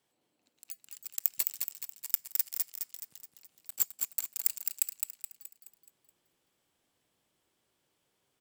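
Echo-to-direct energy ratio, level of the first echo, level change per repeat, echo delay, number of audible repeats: -4.0 dB, -5.0 dB, -6.5 dB, 212 ms, 5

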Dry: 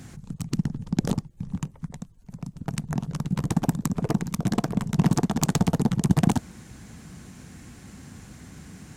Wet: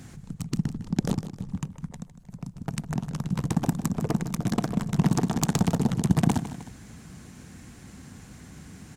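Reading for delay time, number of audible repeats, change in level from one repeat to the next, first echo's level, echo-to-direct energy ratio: 155 ms, 2, -5.5 dB, -13.0 dB, -12.0 dB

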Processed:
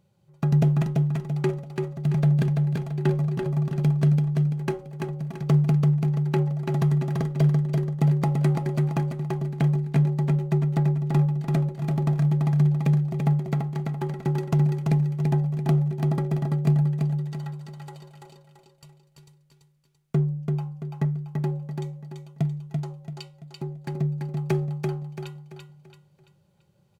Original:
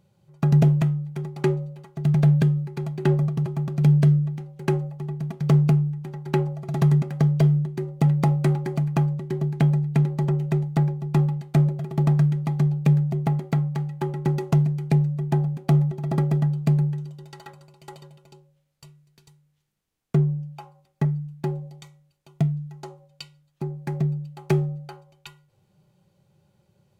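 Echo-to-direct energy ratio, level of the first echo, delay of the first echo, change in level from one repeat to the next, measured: -3.5 dB, -4.0 dB, 337 ms, -8.0 dB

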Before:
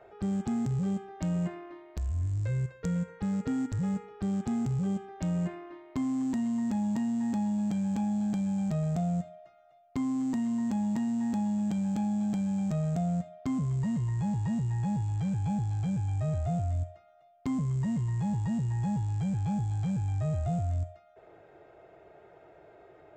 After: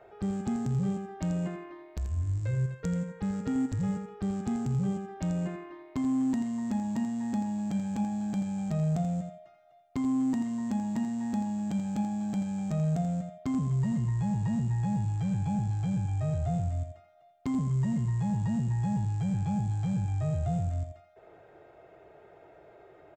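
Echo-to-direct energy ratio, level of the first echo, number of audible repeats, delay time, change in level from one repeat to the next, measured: -9.0 dB, -9.0 dB, 2, 84 ms, -16.0 dB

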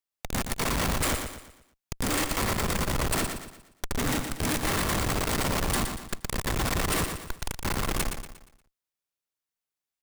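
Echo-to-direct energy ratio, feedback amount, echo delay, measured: -6.0 dB, 40%, 118 ms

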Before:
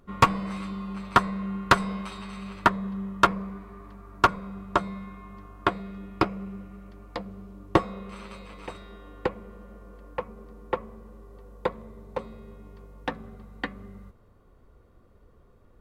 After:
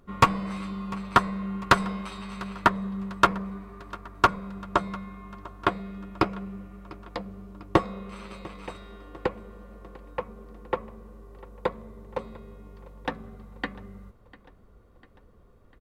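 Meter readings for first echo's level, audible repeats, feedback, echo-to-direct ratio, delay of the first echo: -21.0 dB, 3, 55%, -19.5 dB, 698 ms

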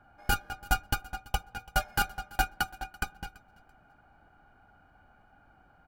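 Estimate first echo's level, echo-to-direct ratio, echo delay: -22.5 dB, -22.0 dB, 335 ms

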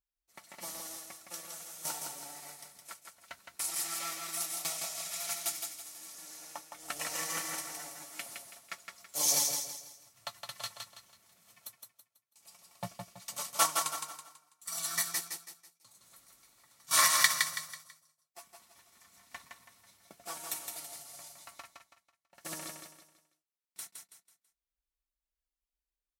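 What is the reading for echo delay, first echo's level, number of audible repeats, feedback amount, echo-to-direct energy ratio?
164 ms, -5.0 dB, 4, 36%, -4.5 dB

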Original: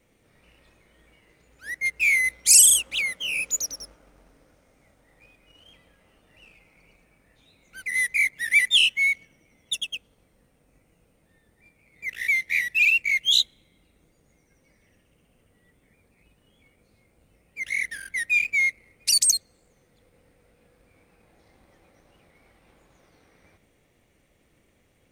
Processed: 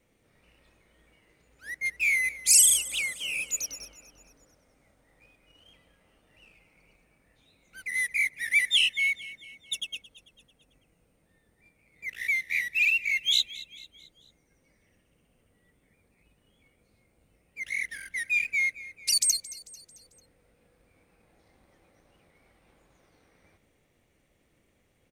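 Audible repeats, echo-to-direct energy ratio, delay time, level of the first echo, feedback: 3, -17.0 dB, 222 ms, -18.0 dB, 49%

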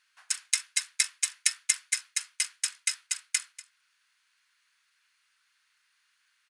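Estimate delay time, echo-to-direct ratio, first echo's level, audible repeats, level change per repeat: 241 ms, -18.5 dB, -18.5 dB, 1, no regular repeats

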